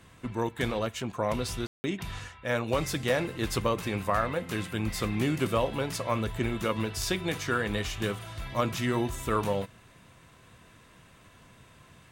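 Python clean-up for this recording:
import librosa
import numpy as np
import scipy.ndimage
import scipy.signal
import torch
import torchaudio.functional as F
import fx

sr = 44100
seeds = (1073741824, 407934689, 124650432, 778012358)

y = fx.fix_ambience(x, sr, seeds[0], print_start_s=10.84, print_end_s=11.34, start_s=1.67, end_s=1.84)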